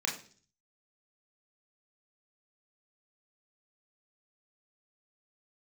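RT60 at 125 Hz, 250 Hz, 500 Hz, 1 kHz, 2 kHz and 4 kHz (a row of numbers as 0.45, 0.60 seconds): 0.75, 0.60, 0.50, 0.40, 0.40, 0.55 seconds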